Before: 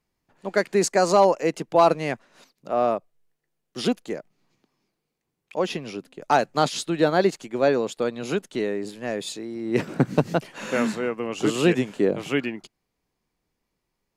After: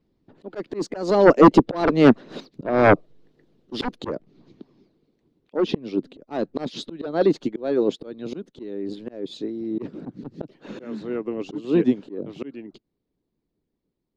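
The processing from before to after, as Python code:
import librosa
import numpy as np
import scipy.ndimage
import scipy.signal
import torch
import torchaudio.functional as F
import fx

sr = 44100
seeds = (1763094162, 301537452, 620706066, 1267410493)

y = fx.doppler_pass(x, sr, speed_mps=6, closest_m=4.4, pass_at_s=3.2)
y = fx.curve_eq(y, sr, hz=(120.0, 300.0, 450.0, 780.0, 2500.0, 3800.0, 9500.0), db=(0, 9, 3, -7, -12, -5, -28))
y = fx.hpss(y, sr, part='harmonic', gain_db=-11)
y = fx.fold_sine(y, sr, drive_db=15, ceiling_db=-11.0)
y = fx.auto_swell(y, sr, attack_ms=371.0)
y = y * 10.0 ** (6.0 / 20.0)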